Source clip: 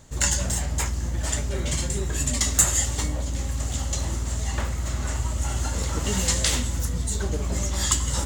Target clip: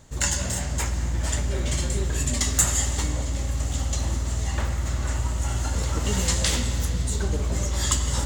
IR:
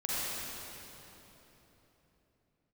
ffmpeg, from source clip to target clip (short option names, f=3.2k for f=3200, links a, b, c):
-filter_complex "[0:a]asplit=2[a][b];[1:a]atrim=start_sample=2205,lowpass=6.4k[c];[b][c]afir=irnorm=-1:irlink=0,volume=-12.5dB[d];[a][d]amix=inputs=2:normalize=0,volume=-2dB"